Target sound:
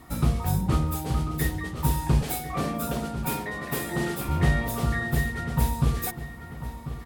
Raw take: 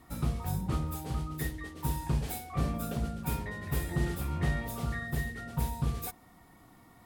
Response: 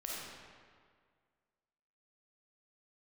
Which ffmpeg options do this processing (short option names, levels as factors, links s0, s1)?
-filter_complex "[0:a]asettb=1/sr,asplit=3[s0][s1][s2];[s0]atrim=end=2.224[s3];[s1]atrim=start=2.22:end=4.29,asetpts=PTS-STARTPTS,afade=t=in:d=0.004:c=qsin,afade=t=out:st=2.066:d=0.004:c=qsin,highpass=220[s4];[s2]atrim=start=4.286[s5];[s3][s4]acrossfade=d=0.004:c1=hsin:c2=qsin[s6];[s6][s5]acrossfade=d=0.004:c1=qsin:c2=hsin,asplit=2[s7][s8];[s8]adelay=1044,lowpass=f=4100:p=1,volume=0.251,asplit=2[s9][s10];[s10]adelay=1044,lowpass=f=4100:p=1,volume=0.43,asplit=2[s11][s12];[s12]adelay=1044,lowpass=f=4100:p=1,volume=0.43,asplit=2[s13][s14];[s14]adelay=1044,lowpass=f=4100:p=1,volume=0.43[s15];[s7][s9][s11][s13][s15]amix=inputs=5:normalize=0,volume=2.51"